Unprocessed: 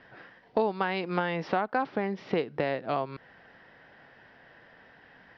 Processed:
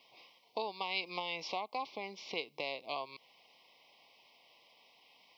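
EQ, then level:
elliptic band-stop filter 1,100–2,200 Hz, stop band 40 dB
first difference
+10.5 dB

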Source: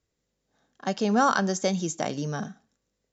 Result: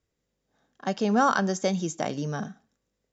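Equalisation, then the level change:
high-shelf EQ 5,600 Hz −5.5 dB
notch filter 4,200 Hz, Q 23
0.0 dB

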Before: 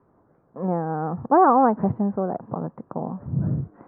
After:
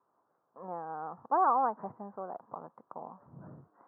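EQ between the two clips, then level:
resonant band-pass 1,100 Hz, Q 1.7
high-frequency loss of the air 360 metres
−5.0 dB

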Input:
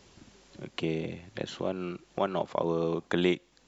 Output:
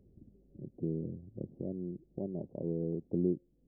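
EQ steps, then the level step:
Gaussian smoothing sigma 22 samples
0.0 dB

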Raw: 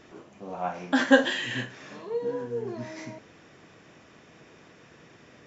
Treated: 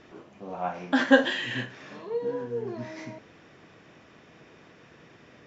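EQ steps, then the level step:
low-pass filter 5,300 Hz 12 dB per octave
0.0 dB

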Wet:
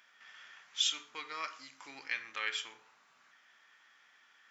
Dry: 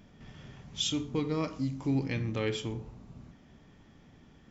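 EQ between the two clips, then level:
high-pass with resonance 1,500 Hz, resonance Q 2.1
0.0 dB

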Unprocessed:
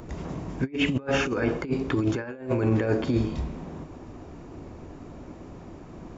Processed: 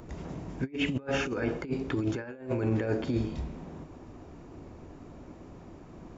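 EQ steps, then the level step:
dynamic equaliser 1,100 Hz, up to −5 dB, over −55 dBFS, Q 7.5
−5.0 dB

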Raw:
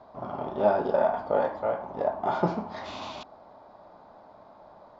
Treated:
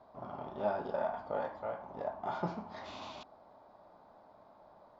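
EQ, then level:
dynamic equaliser 400 Hz, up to −5 dB, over −37 dBFS, Q 0.84
−8.0 dB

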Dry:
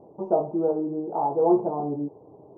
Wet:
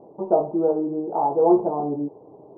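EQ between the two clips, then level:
high-frequency loss of the air 250 metres
parametric band 62 Hz −10 dB 2.2 octaves
+4.5 dB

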